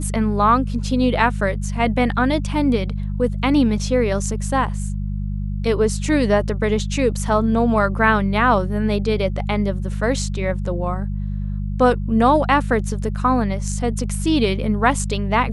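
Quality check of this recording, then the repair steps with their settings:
hum 50 Hz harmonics 4 -24 dBFS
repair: de-hum 50 Hz, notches 4

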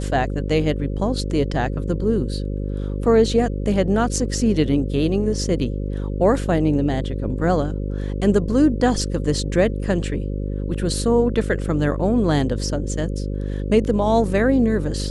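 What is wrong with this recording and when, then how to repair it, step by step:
buzz 50 Hz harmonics 11 -25 dBFS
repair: de-hum 50 Hz, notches 11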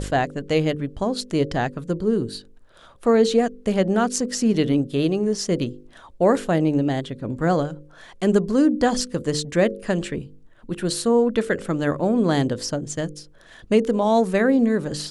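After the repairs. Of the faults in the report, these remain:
nothing left

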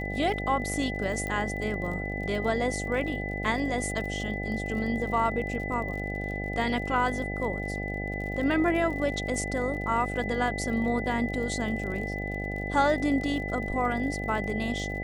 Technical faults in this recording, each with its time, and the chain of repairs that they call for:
buzz 50 Hz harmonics 16 -34 dBFS
crackle 47 per s -37 dBFS
whine 2 kHz -35 dBFS
1.27 s: pop -20 dBFS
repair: de-click; band-stop 2 kHz, Q 30; de-hum 50 Hz, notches 16

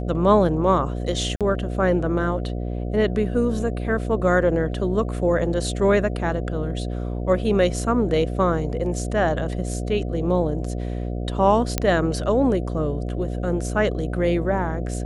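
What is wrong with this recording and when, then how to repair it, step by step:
buzz 60 Hz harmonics 12 -27 dBFS
1.36–1.41 s: dropout 47 ms
11.78 s: pop -5 dBFS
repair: de-click; de-hum 60 Hz, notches 12; interpolate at 1.36 s, 47 ms

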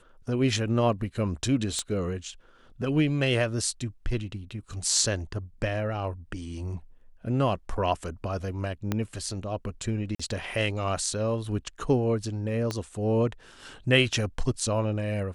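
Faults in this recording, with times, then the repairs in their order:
1.79 s: pop -17 dBFS
8.92 s: pop -13 dBFS
10.15–10.20 s: dropout 45 ms
12.71 s: pop -16 dBFS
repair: de-click; interpolate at 10.15 s, 45 ms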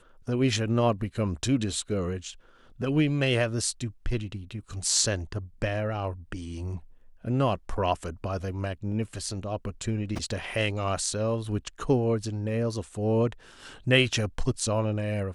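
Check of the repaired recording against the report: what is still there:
8.92 s: pop
12.71 s: pop

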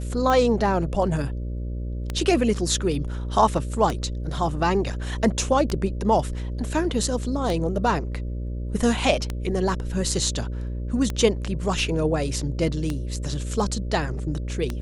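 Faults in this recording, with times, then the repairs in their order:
buzz 60 Hz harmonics 10 -29 dBFS
tick 33 1/3 rpm -12 dBFS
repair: de-click; de-hum 60 Hz, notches 10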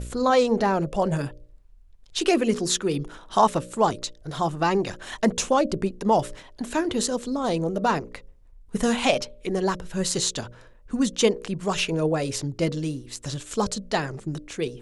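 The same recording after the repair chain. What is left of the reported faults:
nothing left

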